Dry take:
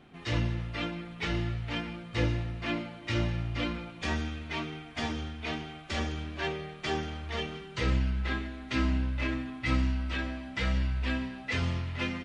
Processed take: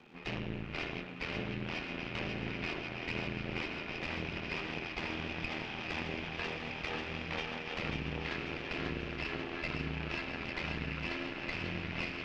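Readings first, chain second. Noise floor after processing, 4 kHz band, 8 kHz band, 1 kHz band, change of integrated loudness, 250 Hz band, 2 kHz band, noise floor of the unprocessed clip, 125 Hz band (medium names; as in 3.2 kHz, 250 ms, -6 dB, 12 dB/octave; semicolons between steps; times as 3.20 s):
-43 dBFS, -3.5 dB, -9.5 dB, -4.0 dB, -5.0 dB, -6.5 dB, -1.5 dB, -46 dBFS, -10.0 dB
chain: backward echo that repeats 630 ms, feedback 78%, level -11 dB; high-pass 74 Hz 12 dB/octave; peaking EQ 2.5 kHz +12 dB 0.3 oct; compression, threshold -33 dBFS, peak gain reduction 10 dB; frequency shift +48 Hz; Chebyshev shaper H 6 -11 dB, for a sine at -20.5 dBFS; ring modulator 41 Hz; crackle 250 per s -44 dBFS; distance through air 220 m; on a send: thinning echo 541 ms, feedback 62%, high-pass 900 Hz, level -3.5 dB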